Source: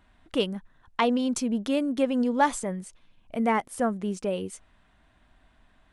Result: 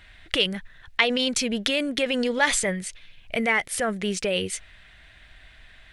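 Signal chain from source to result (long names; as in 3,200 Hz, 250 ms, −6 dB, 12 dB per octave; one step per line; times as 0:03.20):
octave-band graphic EQ 250/1,000/2,000/4,000 Hz −12/−10/+10/+6 dB
in parallel at −1 dB: compressor whose output falls as the input rises −33 dBFS, ratio −0.5
on the sum: level +2.5 dB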